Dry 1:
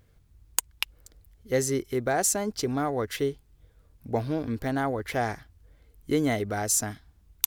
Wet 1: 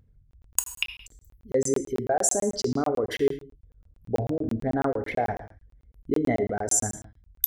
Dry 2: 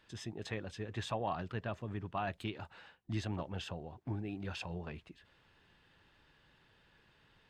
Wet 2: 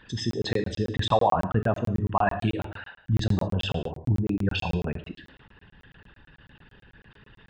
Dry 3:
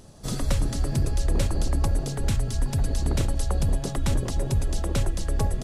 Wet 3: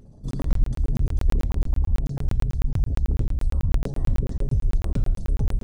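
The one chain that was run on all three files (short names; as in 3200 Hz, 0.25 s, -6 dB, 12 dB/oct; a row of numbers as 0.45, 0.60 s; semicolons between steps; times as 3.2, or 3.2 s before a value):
formant sharpening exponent 2; non-linear reverb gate 0.25 s falling, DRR 6.5 dB; crackling interface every 0.11 s, samples 1024, zero, from 0.31; match loudness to -27 LUFS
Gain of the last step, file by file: +1.5, +15.0, +1.0 dB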